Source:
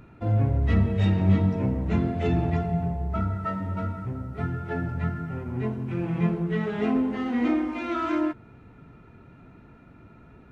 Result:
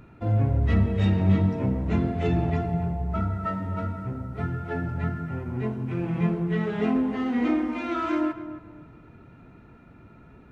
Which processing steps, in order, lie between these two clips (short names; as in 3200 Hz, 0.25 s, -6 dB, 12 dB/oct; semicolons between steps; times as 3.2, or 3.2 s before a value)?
tape echo 0.271 s, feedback 33%, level -11 dB, low-pass 1500 Hz